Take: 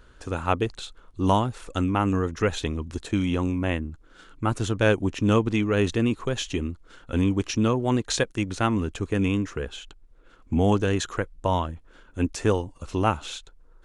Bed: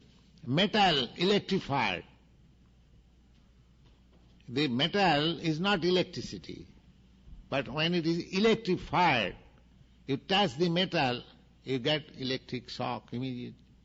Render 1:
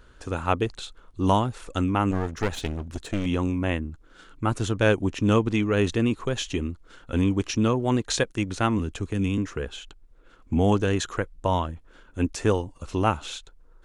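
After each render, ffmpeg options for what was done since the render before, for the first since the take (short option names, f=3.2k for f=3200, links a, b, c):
-filter_complex "[0:a]asettb=1/sr,asplit=3[a][b][c];[a]atrim=end=2.114[d];[b]atrim=start=2.11:end=3.26,asetpts=PTS-STARTPTS,afade=t=in:d=0.004:c=qsin,afade=t=out:st=1.146:d=0.004:c=qsin,aeval=exprs='clip(val(0),-1,0.0224)':c=same[e];[c]atrim=start=3.256[f];[d][e]acrossfade=d=0.004:c1=hsin:c2=qsin[g];[g][f]acrossfade=d=0.004:c1=qsin:c2=hsin,asettb=1/sr,asplit=3[h][i][j];[h]atrim=end=8.794[k];[i]atrim=start=8.79:end=9.38,asetpts=PTS-STARTPTS,afade=t=in:d=0.004:c=qsin,afade=t=out:st=0.586:d=0.004:c=qsin,acrossover=split=300|3000[l][m][n];[m]acompressor=threshold=-34dB:ratio=6:attack=3.2:release=140:knee=2.83:detection=peak[o];[l][o][n]amix=inputs=3:normalize=0[p];[j]atrim=start=9.376[q];[k][p]acrossfade=d=0.004:c1=hsin:c2=qsin[r];[r][q]acrossfade=d=0.004:c1=qsin:c2=hsin"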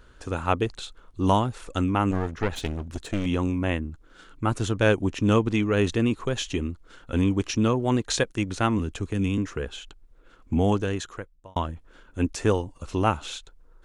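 -filter_complex "[0:a]asettb=1/sr,asplit=3[a][b][c];[a]atrim=end=2.164[d];[b]atrim=start=2.16:end=2.56,asetpts=PTS-STARTPTS,afade=t=in:d=0.004:c=qsin,afade=t=out:st=0.396:d=0.004:c=qsin,acrossover=split=3800[e][f];[f]acompressor=threshold=-56dB:ratio=4:attack=1:release=60[g];[e][g]amix=inputs=2:normalize=0[h];[c]atrim=start=2.556[i];[d][h]acrossfade=d=0.004:c1=hsin:c2=qsin[j];[j][i]acrossfade=d=0.004:c1=qsin:c2=hsin,asplit=2[k][l];[k]atrim=end=11.56,asetpts=PTS-STARTPTS,afade=t=out:st=10.53:d=1.03[m];[l]atrim=start=11.56,asetpts=PTS-STARTPTS,afade=t=in:d=0.004:c=hsin[n];[m][n]concat=n=2:v=0:a=1"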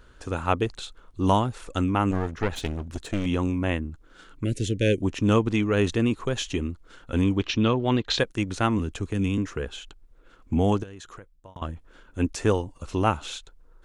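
-filter_complex "[0:a]asettb=1/sr,asplit=3[a][b][c];[a]atrim=end=4.444[d];[b]atrim=start=4.44:end=5.02,asetpts=PTS-STARTPTS,afade=t=in:d=0.004:c=qsin,afade=t=out:st=0.576:d=0.004:c=qsin,asuperstop=centerf=1000:order=8:qfactor=0.76[e];[c]atrim=start=5.016[f];[d][e]acrossfade=d=0.004:c1=hsin:c2=qsin[g];[g][f]acrossfade=d=0.004:c1=qsin:c2=hsin,asettb=1/sr,asplit=3[h][i][j];[h]atrim=end=7.374[k];[i]atrim=start=7.37:end=8.19,asetpts=PTS-STARTPTS,afade=t=in:d=0.004:c=qsin,afade=t=out:st=0.816:d=0.004:c=qsin,lowpass=f=3.6k:t=q:w=2[l];[j]atrim=start=8.186[m];[k][l]acrossfade=d=0.004:c1=hsin:c2=qsin[n];[n][m]acrossfade=d=0.004:c1=qsin:c2=hsin,asettb=1/sr,asplit=3[o][p][q];[o]atrim=end=10.834[r];[p]atrim=start=10.83:end=11.62,asetpts=PTS-STARTPTS,afade=t=in:d=0.004:c=qsin,afade=t=out:st=0.786:d=0.004:c=qsin,acompressor=threshold=-38dB:ratio=8:attack=3.2:release=140:knee=1:detection=peak[s];[q]atrim=start=11.616[t];[r][s]acrossfade=d=0.004:c1=hsin:c2=qsin[u];[u][t]acrossfade=d=0.004:c1=qsin:c2=hsin"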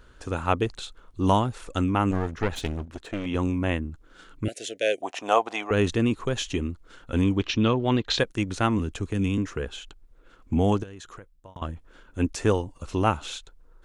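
-filter_complex "[0:a]asettb=1/sr,asplit=3[a][b][c];[a]atrim=end=2.854[d];[b]atrim=start=2.85:end=3.35,asetpts=PTS-STARTPTS,afade=t=in:d=0.004:c=qsin,afade=t=out:st=0.496:d=0.004:c=qsin,bass=f=250:g=-8,treble=f=4k:g=-10[e];[c]atrim=start=3.346[f];[d][e]acrossfade=d=0.004:c1=hsin:c2=qsin[g];[g][f]acrossfade=d=0.004:c1=qsin:c2=hsin,asettb=1/sr,asplit=3[h][i][j];[h]atrim=end=4.484[k];[i]atrim=start=4.48:end=5.71,asetpts=PTS-STARTPTS,afade=t=in:d=0.004:c=qsin,afade=t=out:st=1.226:d=0.004:c=qsin,highpass=f=720:t=q:w=8[l];[j]atrim=start=5.706[m];[k][l]acrossfade=d=0.004:c1=hsin:c2=qsin[n];[n][m]acrossfade=d=0.004:c1=qsin:c2=hsin"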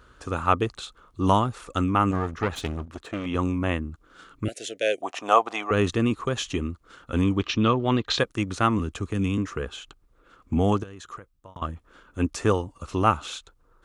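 -af "highpass=42,equalizer=f=1.2k:w=5.5:g=9"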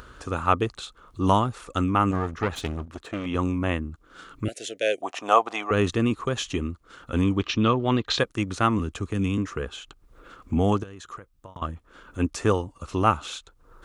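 -af "acompressor=mode=upward:threshold=-38dB:ratio=2.5"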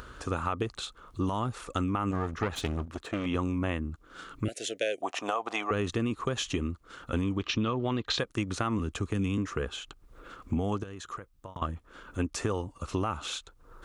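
-af "alimiter=limit=-14dB:level=0:latency=1:release=81,acompressor=threshold=-26dB:ratio=6"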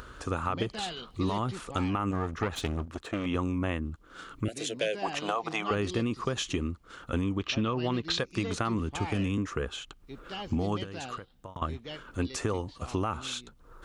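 -filter_complex "[1:a]volume=-13dB[a];[0:a][a]amix=inputs=2:normalize=0"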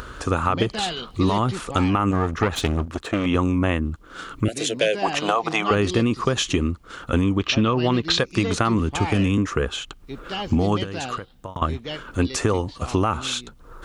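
-af "volume=9.5dB"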